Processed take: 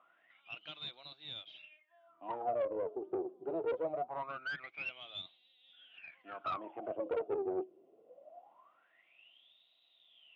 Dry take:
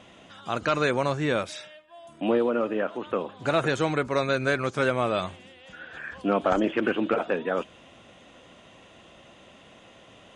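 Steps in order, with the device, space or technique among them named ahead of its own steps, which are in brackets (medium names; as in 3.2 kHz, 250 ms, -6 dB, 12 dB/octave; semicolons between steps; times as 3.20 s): wah-wah guitar rig (wah-wah 0.23 Hz 370–3900 Hz, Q 21; valve stage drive 38 dB, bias 0.45; cabinet simulation 110–3600 Hz, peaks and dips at 160 Hz +5 dB, 320 Hz +7 dB, 690 Hz +9 dB, 1.7 kHz -7 dB); trim +6 dB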